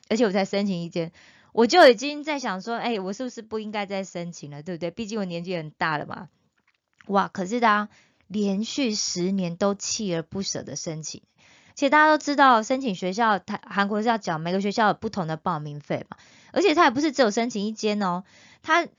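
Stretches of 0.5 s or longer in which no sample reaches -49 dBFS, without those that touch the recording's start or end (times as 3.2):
6.27–6.93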